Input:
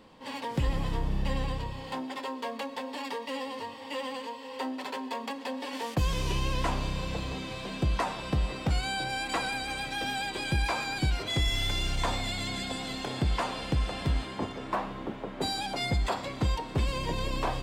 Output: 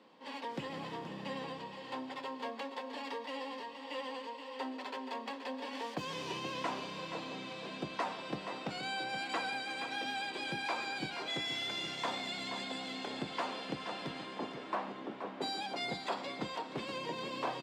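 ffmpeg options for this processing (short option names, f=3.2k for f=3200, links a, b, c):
-filter_complex "[0:a]highpass=f=120:w=0.5412,highpass=f=120:w=1.3066,acrossover=split=190 6300:gain=0.126 1 0.251[a][b][c];[a][b][c]amix=inputs=3:normalize=0,asplit=2[d][e];[e]aecho=0:1:476:0.355[f];[d][f]amix=inputs=2:normalize=0,volume=-5.5dB"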